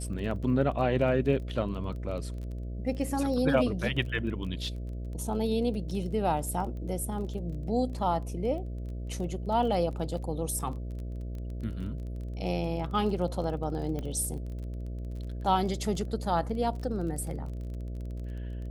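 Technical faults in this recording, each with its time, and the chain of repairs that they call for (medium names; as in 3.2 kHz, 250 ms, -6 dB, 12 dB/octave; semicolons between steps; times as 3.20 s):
buzz 60 Hz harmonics 11 -36 dBFS
crackle 24 per s -38 dBFS
13.99 s: pop -23 dBFS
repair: de-click; de-hum 60 Hz, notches 11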